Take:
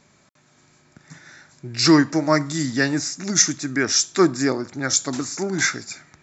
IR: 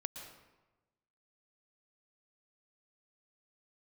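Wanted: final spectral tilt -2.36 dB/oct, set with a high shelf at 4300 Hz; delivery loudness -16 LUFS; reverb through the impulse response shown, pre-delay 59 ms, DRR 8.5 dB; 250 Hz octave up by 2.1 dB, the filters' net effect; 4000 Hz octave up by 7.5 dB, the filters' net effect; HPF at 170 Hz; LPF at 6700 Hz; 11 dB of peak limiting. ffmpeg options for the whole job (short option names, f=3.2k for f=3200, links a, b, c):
-filter_complex "[0:a]highpass=170,lowpass=6.7k,equalizer=f=250:t=o:g=3.5,equalizer=f=4k:t=o:g=8,highshelf=f=4.3k:g=5,alimiter=limit=-7dB:level=0:latency=1,asplit=2[a][b];[1:a]atrim=start_sample=2205,adelay=59[c];[b][c]afir=irnorm=-1:irlink=0,volume=-7dB[d];[a][d]amix=inputs=2:normalize=0,volume=3dB"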